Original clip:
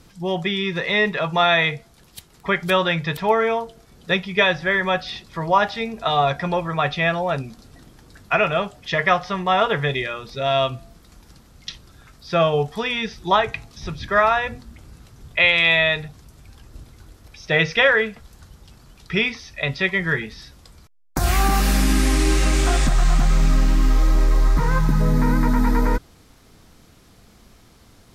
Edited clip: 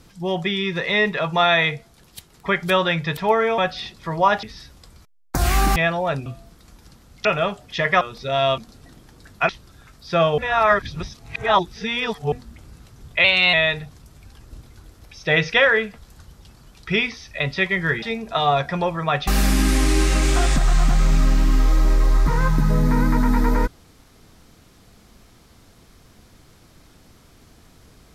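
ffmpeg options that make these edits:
-filter_complex "[0:a]asplit=15[s0][s1][s2][s3][s4][s5][s6][s7][s8][s9][s10][s11][s12][s13][s14];[s0]atrim=end=3.582[s15];[s1]atrim=start=4.878:end=5.732[s16];[s2]atrim=start=20.248:end=21.582[s17];[s3]atrim=start=6.978:end=7.482[s18];[s4]atrim=start=10.698:end=11.692[s19];[s5]atrim=start=8.388:end=9.152[s20];[s6]atrim=start=10.128:end=10.702[s21];[s7]atrim=start=7.478:end=8.392[s22];[s8]atrim=start=11.688:end=12.582[s23];[s9]atrim=start=12.578:end=14.522,asetpts=PTS-STARTPTS,areverse[s24];[s10]atrim=start=14.518:end=15.444[s25];[s11]atrim=start=15.44:end=15.76,asetpts=PTS-STARTPTS,asetrate=48069,aresample=44100[s26];[s12]atrim=start=15.756:end=20.252[s27];[s13]atrim=start=5.728:end=6.982[s28];[s14]atrim=start=21.578[s29];[s15][s16]acrossfade=d=0.004:c1=hsin:c2=hsin[s30];[s30][s17]acrossfade=d=0.004:c1=hsin:c2=hsin[s31];[s31][s18]acrossfade=d=0.004:c1=hsin:c2=hsin[s32];[s32][s19]acrossfade=d=0.004:c1=hsin:c2=hsin[s33];[s33][s20]acrossfade=d=0.004:c1=hsin:c2=hsin[s34];[s34][s21]acrossfade=d=0.004:c1=hsin:c2=hsin[s35];[s35][s22]acrossfade=d=0.004:c1=hsin:c2=hsin[s36];[s36][s23]acrossfade=d=0.004:c1=hsin:c2=hsin[s37];[s37][s24]acrossfade=d=0.004:c1=hsin:c2=hsin[s38];[s38][s25]acrossfade=d=0.004:c1=hsin:c2=hsin[s39];[s39][s26]acrossfade=d=0.004:c1=hsin:c2=hsin[s40];[s40][s27]acrossfade=d=0.004:c1=hsin:c2=hsin[s41];[s41][s28]acrossfade=d=0.004:c1=hsin:c2=hsin[s42];[s42][s29]acrossfade=d=0.004:c1=hsin:c2=hsin"

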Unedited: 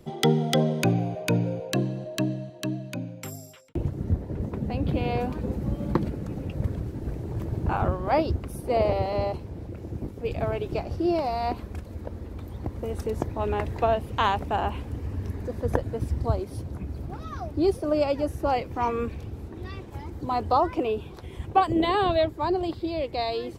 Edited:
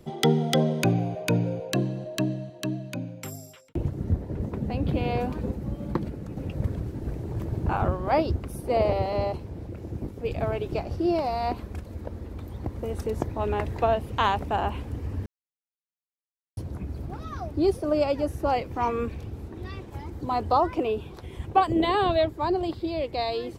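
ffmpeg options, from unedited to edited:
-filter_complex "[0:a]asplit=5[s0][s1][s2][s3][s4];[s0]atrim=end=5.512[s5];[s1]atrim=start=5.508:end=6.372,asetpts=PTS-STARTPTS,volume=0.668[s6];[s2]atrim=start=6.368:end=15.26,asetpts=PTS-STARTPTS,afade=t=out:st=8.888:d=0.004:c=hsin[s7];[s3]atrim=start=15.26:end=16.57,asetpts=PTS-STARTPTS,volume=0[s8];[s4]atrim=start=16.57,asetpts=PTS-STARTPTS,afade=t=in:d=0.004:c=hsin[s9];[s5][s6]acrossfade=d=0.004:c1=hsin:c2=hsin[s10];[s7][s8][s9]concat=n=3:v=0:a=1[s11];[s10][s11]acrossfade=d=0.004:c1=hsin:c2=hsin"

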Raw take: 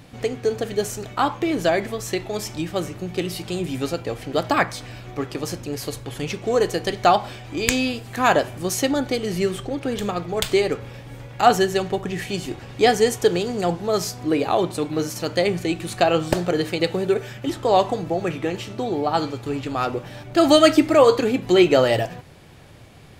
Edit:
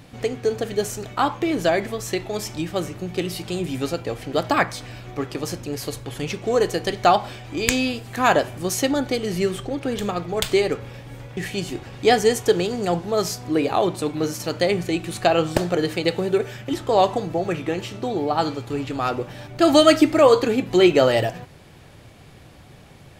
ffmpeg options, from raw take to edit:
-filter_complex "[0:a]asplit=2[s0][s1];[s0]atrim=end=11.372[s2];[s1]atrim=start=12.128[s3];[s2][s3]acrossfade=d=0.004:c1=hsin:c2=hsin"

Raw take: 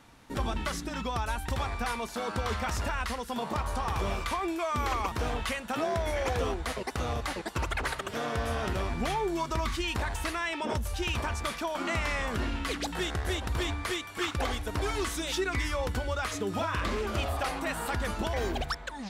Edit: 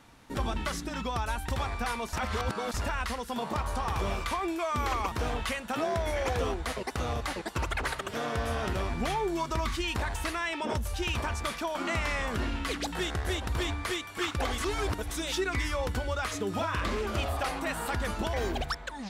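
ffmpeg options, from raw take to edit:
-filter_complex "[0:a]asplit=5[s0][s1][s2][s3][s4];[s0]atrim=end=2.132[s5];[s1]atrim=start=2.128:end=2.742,asetpts=PTS-STARTPTS,areverse[s6];[s2]atrim=start=2.738:end=14.582[s7];[s3]atrim=start=14.578:end=15.112,asetpts=PTS-STARTPTS,areverse[s8];[s4]atrim=start=15.108[s9];[s5][s6]acrossfade=d=0.004:c1=hsin:c2=hsin[s10];[s10][s7]acrossfade=d=0.004:c1=hsin:c2=hsin[s11];[s11][s8]acrossfade=d=0.004:c1=hsin:c2=hsin[s12];[s12][s9]acrossfade=d=0.004:c1=hsin:c2=hsin"

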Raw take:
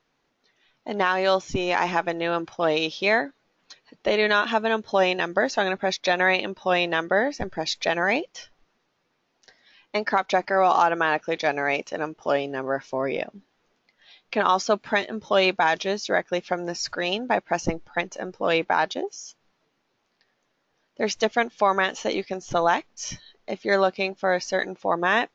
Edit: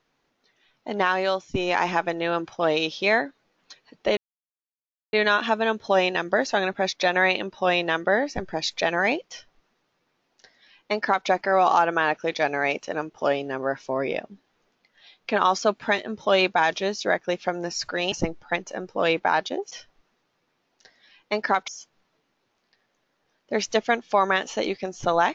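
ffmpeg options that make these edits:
-filter_complex "[0:a]asplit=6[s0][s1][s2][s3][s4][s5];[s0]atrim=end=1.54,asetpts=PTS-STARTPTS,afade=t=out:st=1.15:d=0.39:silence=0.16788[s6];[s1]atrim=start=1.54:end=4.17,asetpts=PTS-STARTPTS,afade=t=in:d=0.004:c=hsin:silence=0.16788,afade=t=out:st=2.626:d=0.004:c=hsin,apad=pad_dur=0.96[s7];[s2]atrim=start=4.17:end=17.162,asetpts=PTS-STARTPTS,afade=t=in:d=0.004:c=hsin[s8];[s3]atrim=start=17.568:end=19.162[s9];[s4]atrim=start=8.338:end=10.312[s10];[s5]atrim=start=19.158[s11];[s6][s7][s8]concat=n=3:v=0:a=1[s12];[s12][s9]acrossfade=d=0.004:c1=hsin:c2=hsin[s13];[s13][s10]acrossfade=d=0.004:c1=hsin:c2=hsin[s14];[s14][s11]acrossfade=d=0.004:c1=hsin:c2=hsin"

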